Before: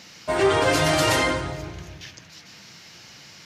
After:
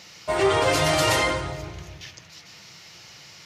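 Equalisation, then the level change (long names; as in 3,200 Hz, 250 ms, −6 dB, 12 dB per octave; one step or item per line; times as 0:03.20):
parametric band 240 Hz −9.5 dB 0.56 octaves
notch filter 1,600 Hz, Q 13
0.0 dB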